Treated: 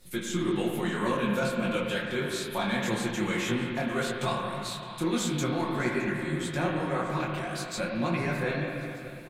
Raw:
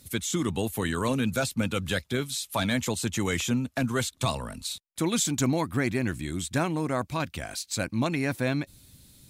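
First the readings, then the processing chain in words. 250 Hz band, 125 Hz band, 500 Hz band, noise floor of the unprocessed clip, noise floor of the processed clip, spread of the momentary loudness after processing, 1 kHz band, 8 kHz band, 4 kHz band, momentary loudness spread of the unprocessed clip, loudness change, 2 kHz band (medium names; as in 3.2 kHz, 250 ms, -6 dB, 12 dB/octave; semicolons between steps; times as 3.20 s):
-1.5 dB, -3.0 dB, +1.0 dB, -62 dBFS, -40 dBFS, 4 LU, +1.0 dB, -8.0 dB, -3.0 dB, 6 LU, -1.5 dB, +0.5 dB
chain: high-pass 120 Hz; tone controls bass -1 dB, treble -7 dB; comb 5.6 ms, depth 70%; in parallel at -2.5 dB: compression, threshold -33 dBFS, peak gain reduction 13 dB; on the sum: added noise brown -53 dBFS; on a send: feedback delay 615 ms, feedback 56%, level -18 dB; on the sum: spring tank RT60 2.6 s, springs 34/53 ms, chirp 45 ms, DRR 0 dB; detune thickener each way 59 cents; trim -2.5 dB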